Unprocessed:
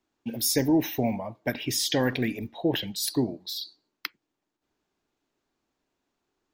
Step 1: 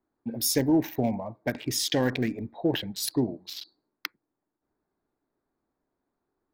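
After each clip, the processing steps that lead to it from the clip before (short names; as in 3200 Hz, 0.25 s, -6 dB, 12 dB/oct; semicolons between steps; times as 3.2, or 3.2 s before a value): Wiener smoothing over 15 samples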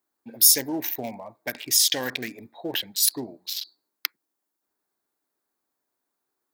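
tilt +4 dB/oct; gain -1 dB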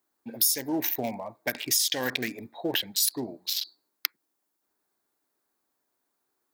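compressor 4:1, threshold -25 dBFS, peak gain reduction 12 dB; gain +2.5 dB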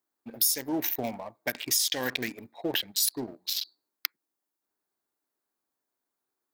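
sample leveller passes 1; gain -5 dB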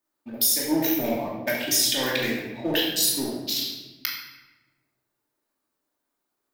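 shoebox room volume 690 m³, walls mixed, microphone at 2.6 m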